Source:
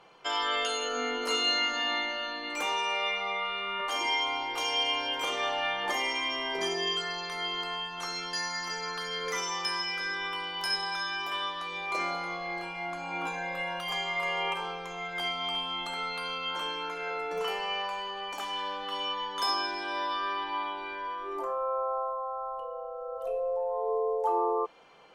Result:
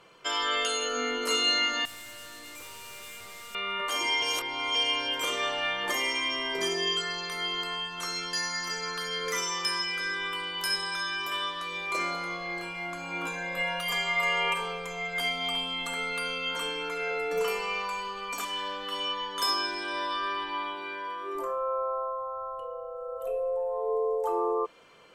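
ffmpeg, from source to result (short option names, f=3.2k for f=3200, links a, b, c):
-filter_complex "[0:a]asettb=1/sr,asplit=3[a][b][c];[a]atrim=end=1.854[d];[b]atrim=start=1.85:end=3.55,asetpts=PTS-STARTPTS,afade=t=in:d=0.004:c=qsin,afade=t=out:st=1.696:d=0.004:c=qsin,aeval=exprs='(tanh(200*val(0)+0.4)-tanh(0.4))/200':c=same[e];[c]atrim=start=3.546[f];[d][e]acrossfade=d=0.004:c1=hsin:c2=qsin[g];[g][f]acrossfade=d=0.004:c1=qsin:c2=hsin,asettb=1/sr,asplit=3[h][i][j];[h]atrim=end=9.854[k];[i]atrim=start=9.85:end=11.24,asetpts=PTS-STARTPTS,afade=t=in:d=0.004:c=qsin,afade=t=out:st=1.386:d=0.004:c=qsin,bandreject=f=5.4k:w=12[l];[j]atrim=start=11.236[m];[k][l]acrossfade=d=0.004:c1=hsin:c2=qsin[n];[n][m]acrossfade=d=0.004:c1=qsin:c2=hsin,asettb=1/sr,asplit=3[o][p][q];[o]atrim=end=13.564[r];[p]atrim=start=13.56:end=18.45,asetpts=PTS-STARTPTS,afade=t=in:d=0.004:c=qsin,afade=t=out:st=4.886:d=0.004:c=qsin,aecho=1:1:4.2:0.67,atrim=end_sample=215649[s];[q]atrim=start=18.446[t];[r][s]acrossfade=d=0.004:c1=hsin:c2=qsin[u];[u][t]acrossfade=d=0.004:c1=qsin:c2=hsin,asettb=1/sr,asplit=3[v][w][x];[v]atrim=end=20.754[y];[w]atrim=start=20.75:end=21.35,asetpts=PTS-STARTPTS,afade=t=in:d=0.004:c=qsin,afade=t=out:st=0.596:d=0.004:c=qsin,highpass=100[z];[x]atrim=start=21.346[aa];[y][z]acrossfade=d=0.004:c1=hsin:c2=qsin[ab];[ab][aa]acrossfade=d=0.004:c1=qsin:c2=hsin,asettb=1/sr,asplit=3[ac][ad][ae];[ac]atrim=end=22.674[af];[ad]atrim=start=22.67:end=23.95,asetpts=PTS-STARTPTS,afade=t=in:d=0.004:c=qsin,afade=t=out:st=1.276:d=0.004:c=qsin,equalizer=f=5.1k:w=2:g=-7.5[ag];[ae]atrim=start=23.946[ah];[af][ag]acrossfade=d=0.004:c1=hsin:c2=qsin[ai];[ai][ah]acrossfade=d=0.004:c1=qsin:c2=hsin,asplit=3[aj][ak][al];[aj]atrim=end=4.222[am];[ak]atrim=start=4.218:end=4.752,asetpts=PTS-STARTPTS,areverse[an];[al]atrim=start=4.748[ao];[am][an]acrossfade=d=0.004:c1=hsin:c2=hsin[ap];[ap][ao]acrossfade=d=0.004:c1=hsin:c2=hsin,equalizer=f=100:t=o:w=0.33:g=8,equalizer=f=800:t=o:w=0.33:g=-11,equalizer=f=8k:t=o:w=0.33:g=8,equalizer=f=12.5k:t=o:w=0.33:g=10,volume=2dB"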